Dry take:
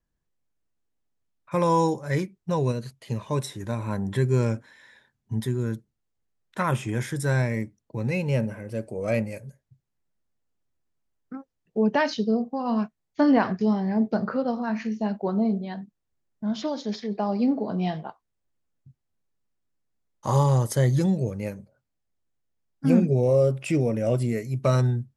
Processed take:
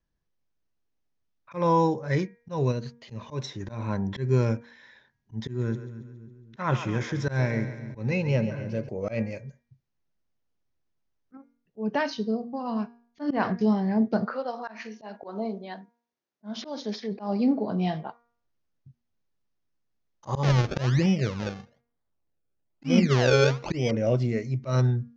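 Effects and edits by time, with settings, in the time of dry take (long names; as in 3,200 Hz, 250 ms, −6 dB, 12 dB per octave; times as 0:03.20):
0:01.58–0:02.08: low-pass filter 3,700 Hz 6 dB per octave
0:05.47–0:08.89: echo with a time of its own for lows and highs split 330 Hz, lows 266 ms, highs 138 ms, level −11.5 dB
0:11.37–0:13.31: tuned comb filter 140 Hz, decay 0.4 s, mix 40%
0:14.24–0:17.11: high-pass filter 610 Hz → 200 Hz
0:20.43–0:23.91: sample-and-hold swept by an LFO 31× 1.1 Hz
whole clip: Butterworth low-pass 6,500 Hz 72 dB per octave; hum removal 236.3 Hz, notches 10; volume swells 135 ms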